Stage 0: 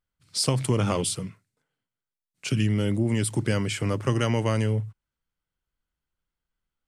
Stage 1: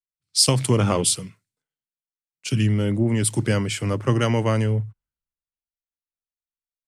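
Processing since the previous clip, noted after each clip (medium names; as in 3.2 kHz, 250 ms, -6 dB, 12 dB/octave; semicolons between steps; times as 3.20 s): three bands expanded up and down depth 70%; trim +3.5 dB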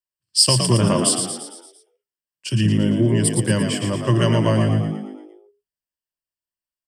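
rippled EQ curve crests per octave 1.3, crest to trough 10 dB; on a send: frequency-shifting echo 114 ms, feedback 52%, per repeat +50 Hz, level -6 dB; on the sum: trim -1 dB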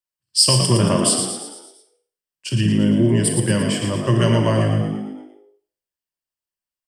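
Schroeder reverb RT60 0.48 s, combs from 31 ms, DRR 7 dB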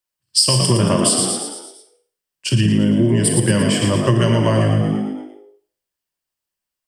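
compression, threshold -18 dBFS, peak gain reduction 8.5 dB; trim +6.5 dB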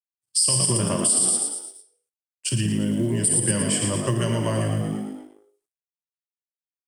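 companding laws mixed up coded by A; peaking EQ 9 kHz +13.5 dB 0.72 oct; peak limiter -1.5 dBFS, peak gain reduction 11.5 dB; trim -8 dB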